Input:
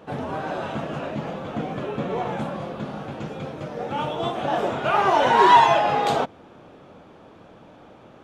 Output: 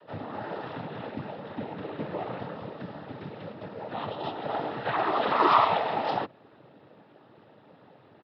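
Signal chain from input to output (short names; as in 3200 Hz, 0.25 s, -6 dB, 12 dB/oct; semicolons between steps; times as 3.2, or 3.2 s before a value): noise vocoder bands 12; downsampling 11025 Hz; gain -7 dB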